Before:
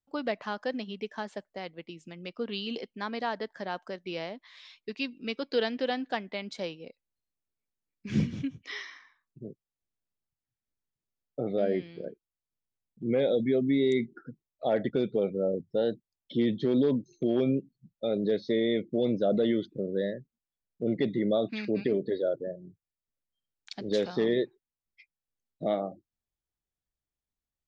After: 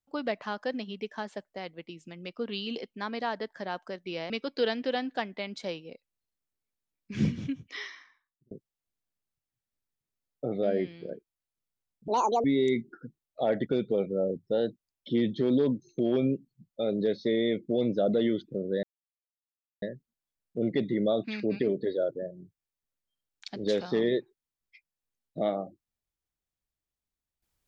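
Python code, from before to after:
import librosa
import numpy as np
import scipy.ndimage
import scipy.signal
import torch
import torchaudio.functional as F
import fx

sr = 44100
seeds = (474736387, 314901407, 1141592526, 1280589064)

y = fx.edit(x, sr, fx.cut(start_s=4.3, length_s=0.95),
    fx.fade_out_span(start_s=8.74, length_s=0.72),
    fx.speed_span(start_s=13.03, length_s=0.65, speed=1.8),
    fx.insert_silence(at_s=20.07, length_s=0.99), tone=tone)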